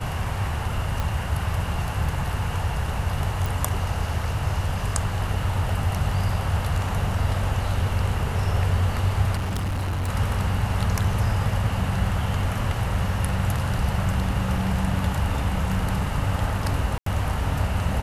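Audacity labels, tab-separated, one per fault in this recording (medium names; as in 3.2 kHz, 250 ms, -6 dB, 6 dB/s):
1.000000	1.000000	pop
3.460000	3.460000	pop
9.360000	10.090000	clipped -23 dBFS
16.980000	17.060000	dropout 83 ms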